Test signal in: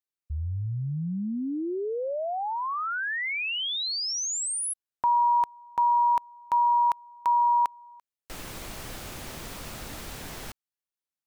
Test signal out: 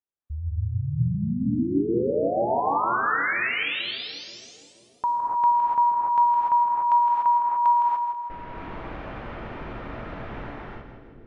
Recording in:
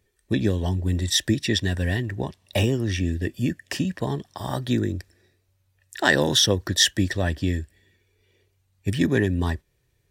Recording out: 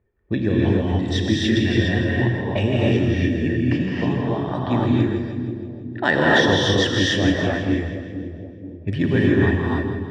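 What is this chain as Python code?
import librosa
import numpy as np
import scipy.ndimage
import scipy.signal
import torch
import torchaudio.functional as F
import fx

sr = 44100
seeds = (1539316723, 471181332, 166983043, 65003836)

p1 = fx.env_lowpass(x, sr, base_hz=1400.0, full_db=-20.0)
p2 = scipy.signal.sosfilt(scipy.signal.butter(2, 2700.0, 'lowpass', fs=sr, output='sos'), p1)
p3 = p2 + fx.echo_split(p2, sr, split_hz=510.0, low_ms=477, high_ms=163, feedback_pct=52, wet_db=-8.5, dry=0)
y = fx.rev_gated(p3, sr, seeds[0], gate_ms=320, shape='rising', drr_db=-4.0)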